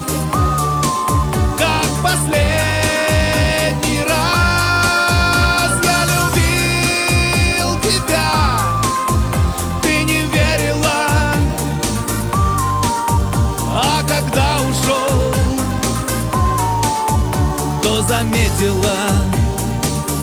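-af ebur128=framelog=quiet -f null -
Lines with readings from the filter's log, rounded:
Integrated loudness:
  I:         -15.4 LUFS
  Threshold: -25.4 LUFS
Loudness range:
  LRA:         2.8 LU
  Threshold: -35.3 LUFS
  LRA low:   -16.5 LUFS
  LRA high:  -13.7 LUFS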